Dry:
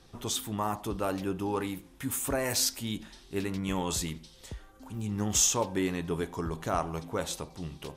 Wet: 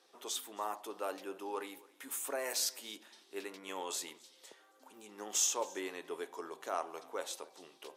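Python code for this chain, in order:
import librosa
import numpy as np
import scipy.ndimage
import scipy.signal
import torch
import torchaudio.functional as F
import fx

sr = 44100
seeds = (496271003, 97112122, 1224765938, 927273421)

p1 = scipy.signal.sosfilt(scipy.signal.butter(4, 370.0, 'highpass', fs=sr, output='sos'), x)
p2 = p1 + fx.echo_single(p1, sr, ms=270, db=-23.0, dry=0)
y = p2 * librosa.db_to_amplitude(-6.5)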